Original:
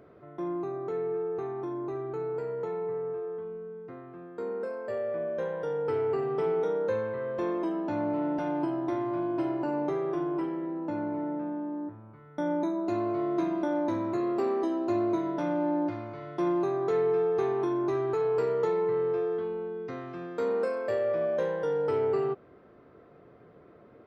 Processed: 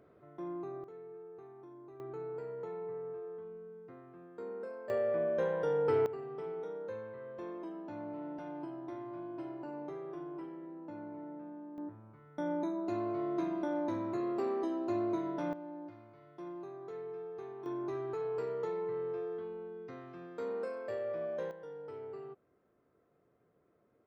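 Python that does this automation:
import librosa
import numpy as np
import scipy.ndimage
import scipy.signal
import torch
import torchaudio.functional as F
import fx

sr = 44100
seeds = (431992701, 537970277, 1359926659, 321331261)

y = fx.gain(x, sr, db=fx.steps((0.0, -8.0), (0.84, -18.0), (2.0, -8.5), (4.9, 0.0), (6.06, -13.0), (11.78, -6.0), (15.53, -17.5), (17.66, -9.5), (21.51, -18.0)))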